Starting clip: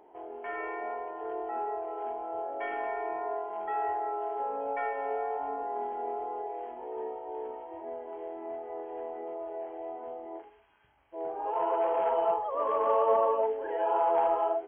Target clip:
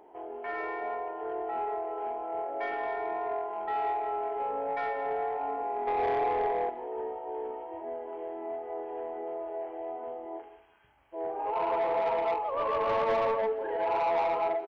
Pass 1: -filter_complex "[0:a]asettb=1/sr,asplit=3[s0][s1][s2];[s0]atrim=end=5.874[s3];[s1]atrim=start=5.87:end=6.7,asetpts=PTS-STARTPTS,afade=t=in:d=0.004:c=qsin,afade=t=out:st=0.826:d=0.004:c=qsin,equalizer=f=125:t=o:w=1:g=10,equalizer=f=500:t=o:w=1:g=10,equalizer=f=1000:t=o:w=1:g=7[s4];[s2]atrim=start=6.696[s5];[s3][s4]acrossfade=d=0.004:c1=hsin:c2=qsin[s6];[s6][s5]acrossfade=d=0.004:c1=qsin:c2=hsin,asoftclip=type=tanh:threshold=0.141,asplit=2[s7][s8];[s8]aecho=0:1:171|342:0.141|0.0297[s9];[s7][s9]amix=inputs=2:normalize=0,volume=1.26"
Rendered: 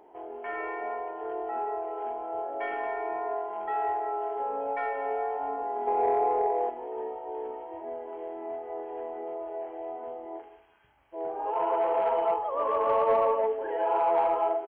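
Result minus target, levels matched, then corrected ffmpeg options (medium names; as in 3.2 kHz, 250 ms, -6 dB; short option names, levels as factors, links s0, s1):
saturation: distortion -11 dB
-filter_complex "[0:a]asettb=1/sr,asplit=3[s0][s1][s2];[s0]atrim=end=5.874[s3];[s1]atrim=start=5.87:end=6.7,asetpts=PTS-STARTPTS,afade=t=in:d=0.004:c=qsin,afade=t=out:st=0.826:d=0.004:c=qsin,equalizer=f=125:t=o:w=1:g=10,equalizer=f=500:t=o:w=1:g=10,equalizer=f=1000:t=o:w=1:g=7[s4];[s2]atrim=start=6.696[s5];[s3][s4]acrossfade=d=0.004:c1=hsin:c2=qsin[s6];[s6][s5]acrossfade=d=0.004:c1=qsin:c2=hsin,asoftclip=type=tanh:threshold=0.0531,asplit=2[s7][s8];[s8]aecho=0:1:171|342:0.141|0.0297[s9];[s7][s9]amix=inputs=2:normalize=0,volume=1.26"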